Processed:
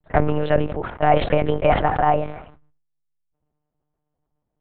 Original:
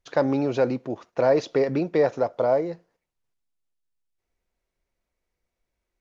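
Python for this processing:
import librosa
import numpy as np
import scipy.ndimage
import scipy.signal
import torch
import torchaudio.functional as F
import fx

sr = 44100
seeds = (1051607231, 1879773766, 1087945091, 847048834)

y = fx.speed_glide(x, sr, from_pct=113, to_pct=148)
y = fx.dynamic_eq(y, sr, hz=1800.0, q=1.4, threshold_db=-40.0, ratio=4.0, max_db=4)
y = fx.env_lowpass(y, sr, base_hz=870.0, full_db=-17.5)
y = fx.lpc_monotone(y, sr, seeds[0], pitch_hz=150.0, order=8)
y = fx.sustainer(y, sr, db_per_s=78.0)
y = y * librosa.db_to_amplitude(3.0)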